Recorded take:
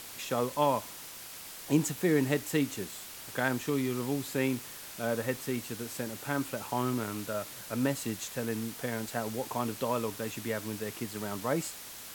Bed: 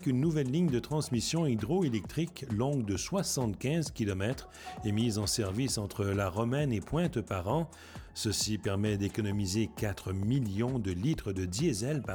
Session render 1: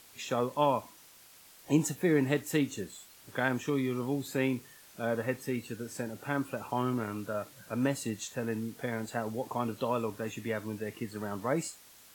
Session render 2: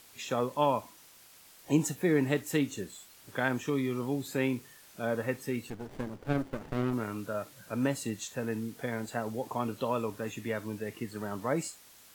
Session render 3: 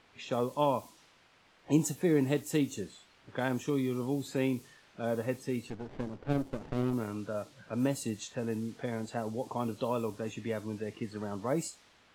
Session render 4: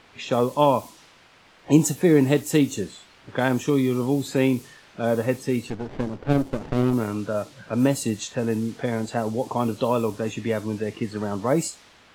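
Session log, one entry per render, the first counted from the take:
noise print and reduce 11 dB
5.70–6.93 s: sliding maximum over 33 samples
level-controlled noise filter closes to 2.4 kHz, open at -27.5 dBFS; dynamic bell 1.7 kHz, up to -7 dB, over -50 dBFS, Q 1.1
trim +10 dB

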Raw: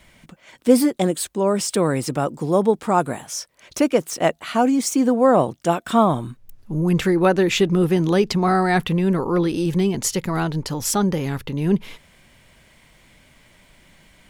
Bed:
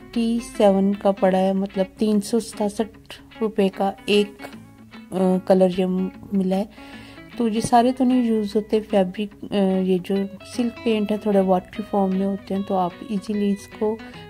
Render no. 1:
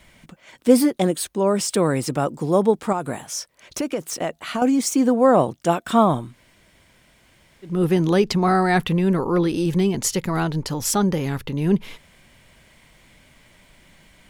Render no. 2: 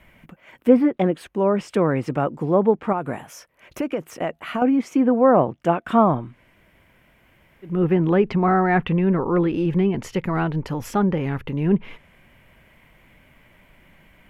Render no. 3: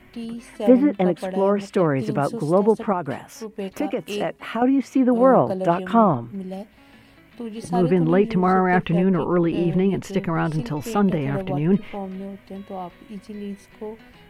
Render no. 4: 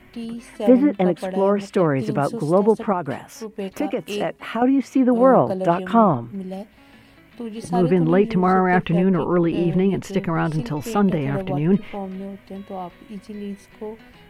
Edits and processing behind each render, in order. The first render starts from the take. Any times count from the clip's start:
0.82–1.53 s: band-stop 7.6 kHz, Q 9.2; 2.92–4.62 s: compression, threshold -20 dBFS; 6.27–7.74 s: room tone, crossfade 0.24 s
low-pass that closes with the level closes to 2.4 kHz, closed at -13.5 dBFS; high-order bell 5.9 kHz -14 dB
add bed -11 dB
trim +1 dB; peak limiter -3 dBFS, peak gain reduction 1 dB

